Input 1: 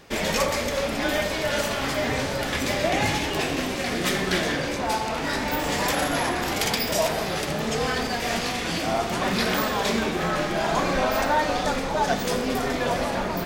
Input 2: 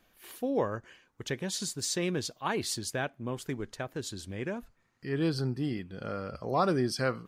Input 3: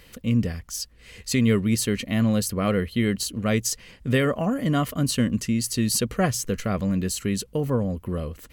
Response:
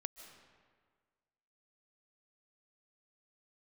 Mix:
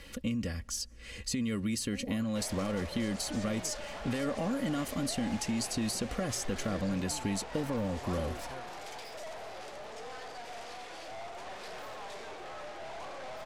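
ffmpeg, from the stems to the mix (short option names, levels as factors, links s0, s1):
-filter_complex "[0:a]highpass=f=360:w=0.5412,highpass=f=360:w=1.3066,equalizer=f=720:w=1.1:g=8.5,aeval=exprs='(tanh(22.4*val(0)+0.65)-tanh(0.65))/22.4':c=same,adelay=2250,volume=0.188[s0];[1:a]adelay=1500,volume=0.119[s1];[2:a]aecho=1:1:3.6:0.46,alimiter=limit=0.141:level=0:latency=1,acrossover=split=790|4900[s2][s3][s4];[s2]acompressor=threshold=0.0251:ratio=4[s5];[s3]acompressor=threshold=0.00631:ratio=4[s6];[s4]acompressor=threshold=0.0158:ratio=4[s7];[s5][s6][s7]amix=inputs=3:normalize=0,volume=0.944,asplit=2[s8][s9];[s9]volume=0.106[s10];[3:a]atrim=start_sample=2205[s11];[s10][s11]afir=irnorm=-1:irlink=0[s12];[s0][s1][s8][s12]amix=inputs=4:normalize=0,lowpass=10000"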